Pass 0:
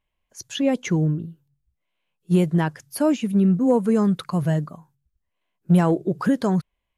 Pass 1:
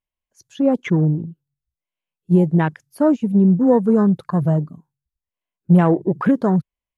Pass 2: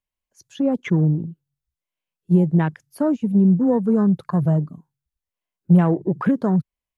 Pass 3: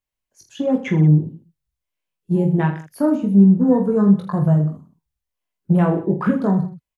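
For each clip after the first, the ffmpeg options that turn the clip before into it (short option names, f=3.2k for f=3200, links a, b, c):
-af "afwtdn=0.0251,volume=4dB"
-filter_complex "[0:a]acrossover=split=220[a][b];[b]acompressor=threshold=-28dB:ratio=1.5[c];[a][c]amix=inputs=2:normalize=0"
-af "aecho=1:1:20|46|79.8|123.7|180.9:0.631|0.398|0.251|0.158|0.1"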